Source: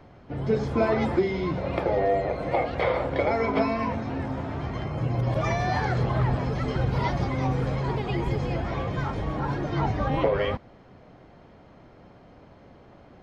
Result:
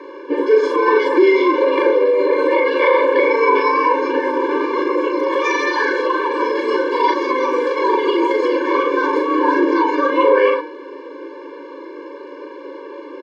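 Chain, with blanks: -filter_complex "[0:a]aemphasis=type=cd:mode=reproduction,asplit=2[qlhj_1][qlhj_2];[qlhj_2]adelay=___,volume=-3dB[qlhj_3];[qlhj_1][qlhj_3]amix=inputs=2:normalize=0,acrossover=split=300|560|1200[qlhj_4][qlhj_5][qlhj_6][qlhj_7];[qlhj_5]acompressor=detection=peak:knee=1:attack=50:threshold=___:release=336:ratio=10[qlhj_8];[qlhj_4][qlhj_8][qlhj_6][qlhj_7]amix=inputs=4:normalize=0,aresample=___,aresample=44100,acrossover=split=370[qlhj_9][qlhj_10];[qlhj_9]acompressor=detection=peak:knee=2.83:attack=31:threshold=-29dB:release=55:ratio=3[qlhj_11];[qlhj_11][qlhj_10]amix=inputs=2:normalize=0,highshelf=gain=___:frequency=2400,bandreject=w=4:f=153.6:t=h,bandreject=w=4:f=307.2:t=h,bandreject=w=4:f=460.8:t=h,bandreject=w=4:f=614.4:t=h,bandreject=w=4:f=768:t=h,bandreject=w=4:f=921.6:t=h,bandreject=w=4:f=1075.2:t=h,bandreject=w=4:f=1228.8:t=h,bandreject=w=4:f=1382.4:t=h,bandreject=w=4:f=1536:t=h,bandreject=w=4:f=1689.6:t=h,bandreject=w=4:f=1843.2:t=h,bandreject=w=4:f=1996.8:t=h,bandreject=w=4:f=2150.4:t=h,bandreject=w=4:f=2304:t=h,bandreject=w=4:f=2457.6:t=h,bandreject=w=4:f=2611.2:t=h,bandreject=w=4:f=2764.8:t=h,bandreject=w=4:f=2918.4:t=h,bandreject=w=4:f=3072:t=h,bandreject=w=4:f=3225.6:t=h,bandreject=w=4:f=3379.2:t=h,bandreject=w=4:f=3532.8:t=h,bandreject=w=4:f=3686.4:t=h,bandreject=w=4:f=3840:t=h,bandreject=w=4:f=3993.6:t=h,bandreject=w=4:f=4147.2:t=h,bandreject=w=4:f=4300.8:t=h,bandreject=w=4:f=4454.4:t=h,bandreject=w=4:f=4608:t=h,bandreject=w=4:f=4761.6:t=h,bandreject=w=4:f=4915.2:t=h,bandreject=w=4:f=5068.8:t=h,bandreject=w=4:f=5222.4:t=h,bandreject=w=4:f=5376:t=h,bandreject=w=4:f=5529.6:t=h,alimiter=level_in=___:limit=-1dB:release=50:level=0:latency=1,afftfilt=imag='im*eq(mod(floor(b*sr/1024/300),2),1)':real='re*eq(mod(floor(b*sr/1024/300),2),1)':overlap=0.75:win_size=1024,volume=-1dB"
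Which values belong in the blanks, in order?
39, -39dB, 32000, -3, 22.5dB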